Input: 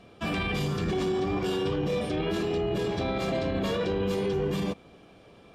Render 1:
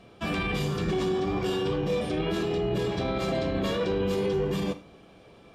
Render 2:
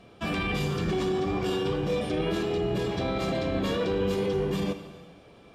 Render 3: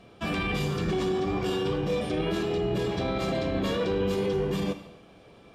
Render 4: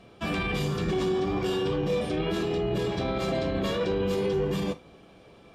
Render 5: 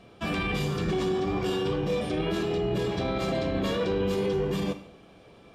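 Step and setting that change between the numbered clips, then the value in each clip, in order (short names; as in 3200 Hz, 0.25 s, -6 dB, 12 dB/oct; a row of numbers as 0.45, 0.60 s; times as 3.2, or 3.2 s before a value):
non-linear reverb, gate: 140, 530, 320, 90, 220 ms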